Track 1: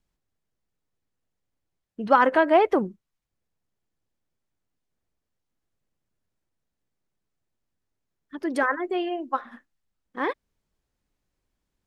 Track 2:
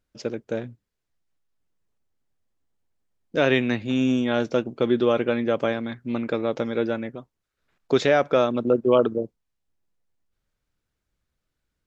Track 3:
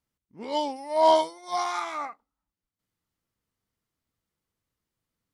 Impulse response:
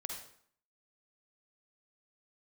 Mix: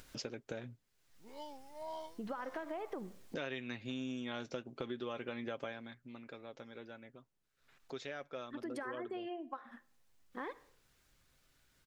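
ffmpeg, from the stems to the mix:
-filter_complex "[0:a]acompressor=threshold=0.0631:ratio=2,adelay=200,volume=0.562,asplit=2[s0][s1];[s1]volume=0.075[s2];[1:a]tiltshelf=f=970:g=-4,aecho=1:1:7.5:0.33,acompressor=mode=upward:threshold=0.0708:ratio=2.5,volume=0.266,afade=t=out:st=5.62:d=0.34:silence=0.266073[s3];[2:a]adelay=850,volume=0.112[s4];[s0][s4]amix=inputs=2:normalize=0,acompressor=threshold=0.00501:ratio=2,volume=1[s5];[3:a]atrim=start_sample=2205[s6];[s2][s6]afir=irnorm=-1:irlink=0[s7];[s3][s5][s7]amix=inputs=3:normalize=0,acompressor=threshold=0.0126:ratio=5"

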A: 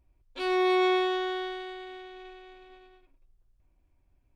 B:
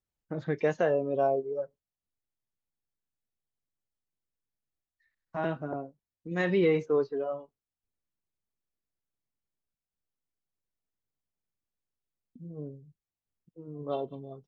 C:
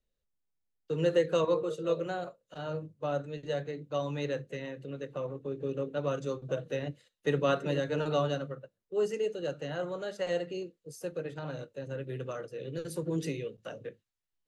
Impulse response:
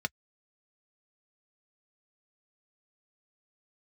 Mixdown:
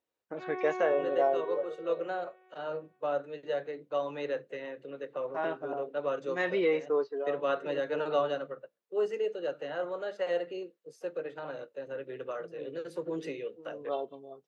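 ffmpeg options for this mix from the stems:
-filter_complex "[0:a]lowpass=f=2300:w=0.5412,lowpass=f=2300:w=1.3066,volume=0.316[s0];[1:a]highshelf=f=6000:g=8.5,volume=1.06,asplit=2[s1][s2];[2:a]lowpass=f=3000:p=1,volume=1.41[s3];[s2]apad=whole_len=638259[s4];[s3][s4]sidechaincompress=threshold=0.0316:ratio=8:attack=34:release=1100[s5];[s0][s1][s5]amix=inputs=3:normalize=0,highpass=420,highshelf=f=5200:g=-11.5"

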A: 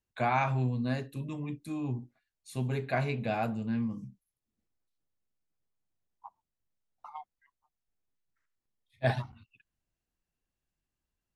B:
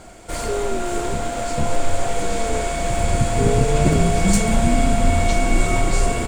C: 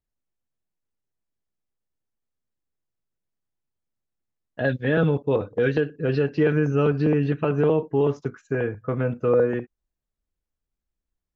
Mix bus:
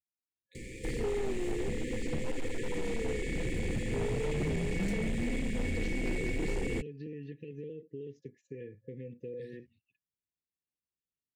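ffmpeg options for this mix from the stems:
-filter_complex "[0:a]adelay=350,volume=0.188[s0];[1:a]acrossover=split=190|470|1100|2400[s1][s2][s3][s4][s5];[s1]acompressor=threshold=0.0224:ratio=4[s6];[s2]acompressor=threshold=0.0178:ratio=4[s7];[s3]acompressor=threshold=0.0158:ratio=4[s8];[s4]acompressor=threshold=0.01:ratio=4[s9];[s5]acompressor=threshold=0.00158:ratio=4[s10];[s6][s7][s8][s9][s10]amix=inputs=5:normalize=0,adelay=550,volume=1[s11];[2:a]volume=0.188[s12];[s0][s12]amix=inputs=2:normalize=0,highpass=100,acompressor=threshold=0.01:ratio=4,volume=1[s13];[s11][s13]amix=inputs=2:normalize=0,afftfilt=real='re*(1-between(b*sr/4096,530,1700))':imag='im*(1-between(b*sr/4096,530,1700))':win_size=4096:overlap=0.75,volume=25.1,asoftclip=hard,volume=0.0398"

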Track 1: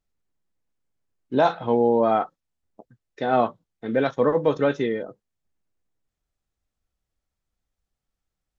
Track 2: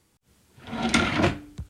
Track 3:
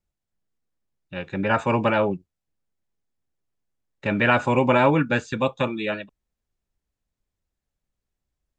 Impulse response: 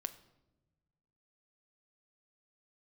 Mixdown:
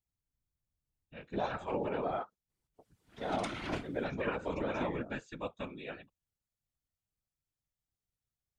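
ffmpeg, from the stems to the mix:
-filter_complex "[0:a]highshelf=f=4900:g=9.5,volume=0.398[s0];[1:a]alimiter=limit=0.158:level=0:latency=1:release=413,adelay=2500,volume=0.631[s1];[2:a]volume=0.266,asplit=2[s2][s3];[s3]apad=whole_len=184898[s4];[s1][s4]sidechaincompress=threshold=0.00316:ratio=8:attack=8.3:release=894[s5];[s0][s2]amix=inputs=2:normalize=0,alimiter=limit=0.119:level=0:latency=1:release=157,volume=1[s6];[s5][s6]amix=inputs=2:normalize=0,afftfilt=real='hypot(re,im)*cos(2*PI*random(0))':imag='hypot(re,im)*sin(2*PI*random(1))':win_size=512:overlap=0.75"

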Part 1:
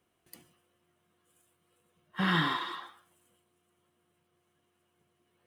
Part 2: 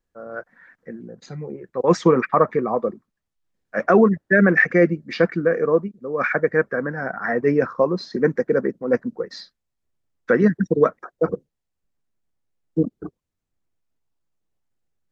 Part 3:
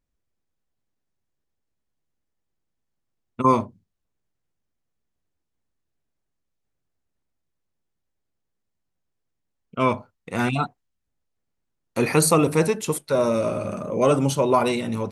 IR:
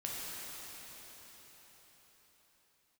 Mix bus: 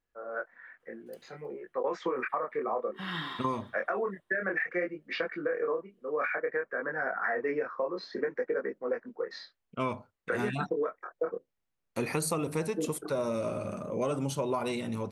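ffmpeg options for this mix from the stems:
-filter_complex "[0:a]adelay=800,volume=0.316,asplit=2[s0][s1];[s1]volume=0.0708[s2];[1:a]acrossover=split=350 3000:gain=0.112 1 0.251[s3][s4][s5];[s3][s4][s5]amix=inputs=3:normalize=0,alimiter=limit=0.251:level=0:latency=1:release=295,flanger=delay=19:depth=7.8:speed=0.58,volume=1[s6];[2:a]volume=0.422[s7];[s0][s6]amix=inputs=2:normalize=0,equalizer=f=3000:t=o:w=1.7:g=4.5,alimiter=limit=0.141:level=0:latency=1:release=442,volume=1[s8];[s2]aecho=0:1:315|630|945|1260:1|0.25|0.0625|0.0156[s9];[s7][s8][s9]amix=inputs=3:normalize=0,acompressor=threshold=0.0447:ratio=6"

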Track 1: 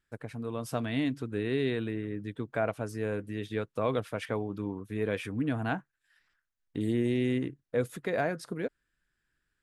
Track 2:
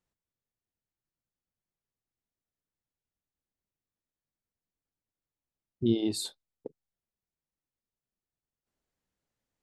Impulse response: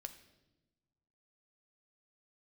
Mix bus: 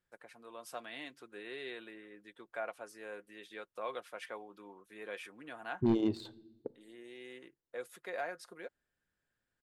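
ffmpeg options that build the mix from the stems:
-filter_complex "[0:a]highpass=590,aecho=1:1:5.6:0.39,volume=0.422[s0];[1:a]volume=11.2,asoftclip=hard,volume=0.0891,adynamicsmooth=sensitivity=2.5:basefreq=1500,volume=0.708,asplit=3[s1][s2][s3];[s2]volume=0.631[s4];[s3]apad=whole_len=424591[s5];[s0][s5]sidechaincompress=threshold=0.00708:ratio=10:attack=5.4:release=1500[s6];[2:a]atrim=start_sample=2205[s7];[s4][s7]afir=irnorm=-1:irlink=0[s8];[s6][s1][s8]amix=inputs=3:normalize=0"

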